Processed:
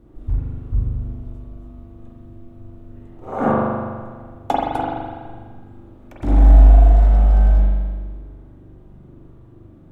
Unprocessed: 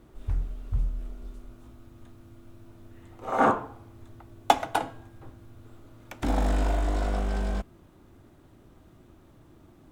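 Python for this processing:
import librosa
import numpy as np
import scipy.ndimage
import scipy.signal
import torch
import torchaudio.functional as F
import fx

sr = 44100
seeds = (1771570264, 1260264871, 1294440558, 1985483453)

y = fx.tilt_shelf(x, sr, db=7.5, hz=740.0)
y = fx.rev_spring(y, sr, rt60_s=1.6, pass_ms=(41,), chirp_ms=40, drr_db=-5.0)
y = F.gain(torch.from_numpy(y), -2.0).numpy()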